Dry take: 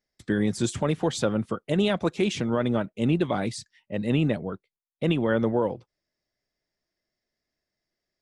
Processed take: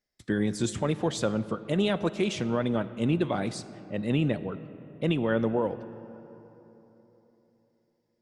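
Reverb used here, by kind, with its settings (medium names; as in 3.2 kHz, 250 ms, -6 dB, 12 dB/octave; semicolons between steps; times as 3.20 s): algorithmic reverb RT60 3.7 s, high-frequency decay 0.45×, pre-delay 0 ms, DRR 14 dB; trim -2.5 dB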